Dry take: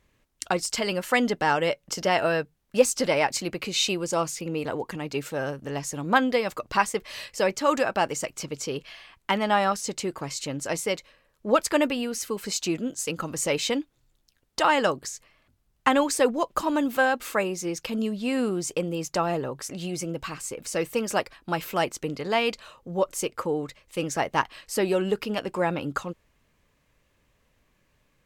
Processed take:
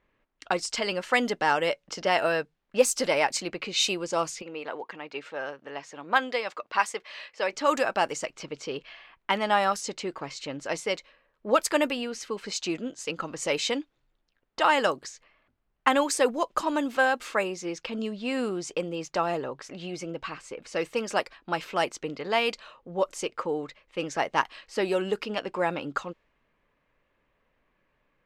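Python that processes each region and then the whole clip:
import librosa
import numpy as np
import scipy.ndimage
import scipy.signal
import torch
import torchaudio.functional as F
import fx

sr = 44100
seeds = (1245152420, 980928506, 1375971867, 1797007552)

y = fx.chain(x, sr, fx.highpass(hz=630.0, slope=6),
    fx.high_shelf(hz=8000.0, db=-7.5), at=(4.42, 7.53))
y = fx.low_shelf(y, sr, hz=390.0, db=-3.0)
y = fx.env_lowpass(y, sr, base_hz=2200.0, full_db=-19.5)
y = fx.peak_eq(y, sr, hz=82.0, db=-9.0, octaves=2.1)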